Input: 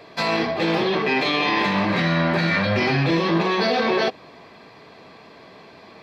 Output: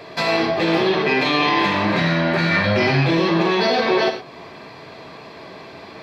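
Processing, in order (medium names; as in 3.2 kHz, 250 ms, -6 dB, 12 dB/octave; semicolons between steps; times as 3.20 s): in parallel at 0 dB: compression, threshold -34 dBFS, peak gain reduction 17 dB; on the sum: gated-style reverb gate 140 ms flat, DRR 5.5 dB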